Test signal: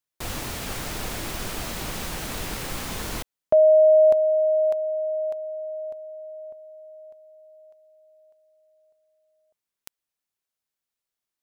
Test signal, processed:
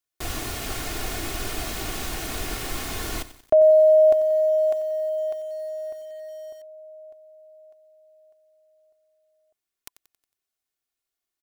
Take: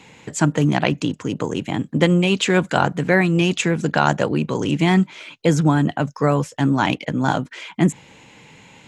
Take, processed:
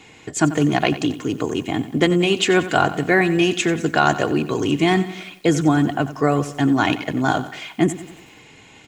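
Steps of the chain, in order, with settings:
notch filter 1,000 Hz, Q 16
comb filter 2.8 ms, depth 48%
feedback echo at a low word length 91 ms, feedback 55%, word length 7 bits, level −14 dB

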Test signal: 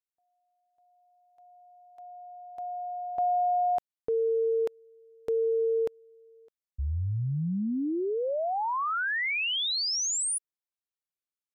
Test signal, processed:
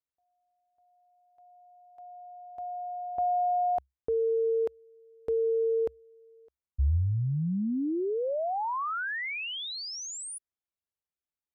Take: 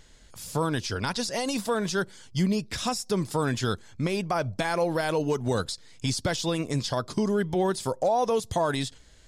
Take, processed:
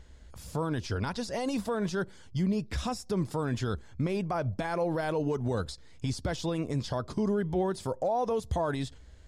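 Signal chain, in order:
parametric band 67 Hz +14 dB 0.46 octaves
brickwall limiter −20.5 dBFS
high-shelf EQ 2,200 Hz −10.5 dB

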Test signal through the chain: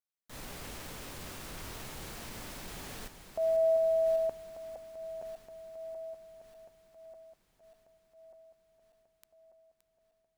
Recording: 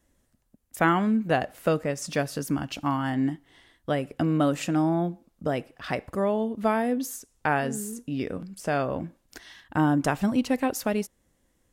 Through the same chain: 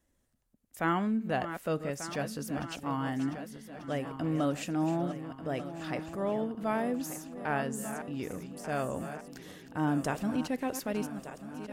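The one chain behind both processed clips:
feedback delay that plays each chunk backwards 595 ms, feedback 71%, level −11.5 dB
transient designer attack −5 dB, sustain 0 dB
level −6 dB

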